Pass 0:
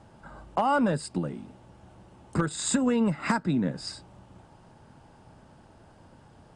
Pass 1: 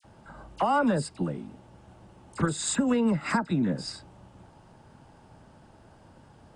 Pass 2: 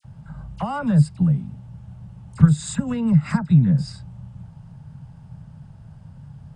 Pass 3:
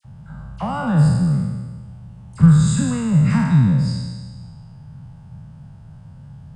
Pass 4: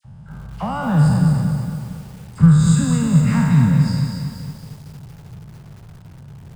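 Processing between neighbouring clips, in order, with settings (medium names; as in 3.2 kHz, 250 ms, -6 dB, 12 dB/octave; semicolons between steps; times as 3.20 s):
phase dispersion lows, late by 46 ms, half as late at 1.7 kHz
resonant low shelf 220 Hz +13.5 dB, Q 3; trim -2.5 dB
spectral sustain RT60 1.51 s; trim -1 dB
bit-crushed delay 230 ms, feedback 55%, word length 7-bit, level -6 dB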